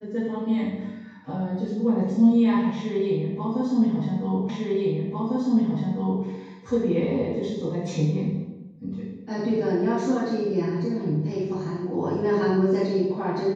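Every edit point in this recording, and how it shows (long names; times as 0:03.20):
0:04.49: the same again, the last 1.75 s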